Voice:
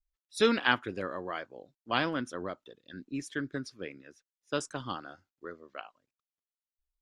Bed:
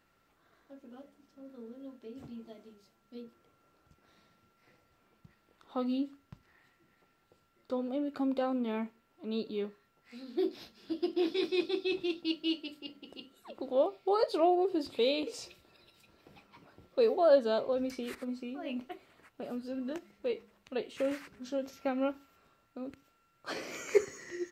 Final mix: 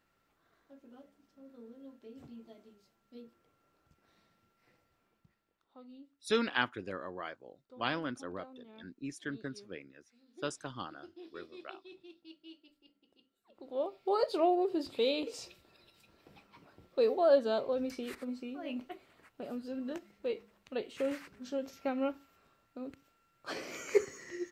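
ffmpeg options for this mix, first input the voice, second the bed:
-filter_complex "[0:a]adelay=5900,volume=-5dB[a];[1:a]volume=14.5dB,afade=t=out:st=4.81:d=0.88:silence=0.158489,afade=t=in:st=13.47:d=0.68:silence=0.112202[b];[a][b]amix=inputs=2:normalize=0"

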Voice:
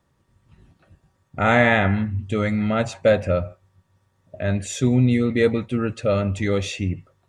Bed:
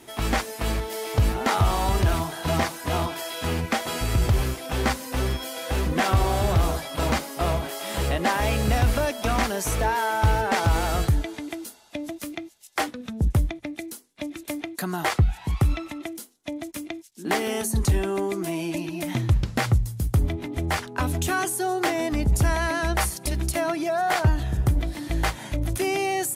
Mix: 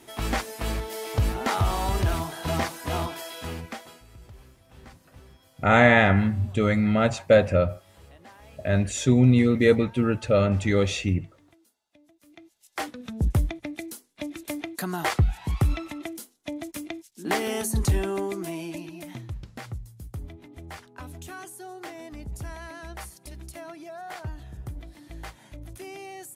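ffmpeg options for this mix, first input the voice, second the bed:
-filter_complex "[0:a]adelay=4250,volume=0dB[a];[1:a]volume=22dB,afade=t=out:st=3.03:d=0.99:silence=0.0668344,afade=t=in:st=12.23:d=0.99:silence=0.0562341,afade=t=out:st=18:d=1.29:silence=0.199526[b];[a][b]amix=inputs=2:normalize=0"

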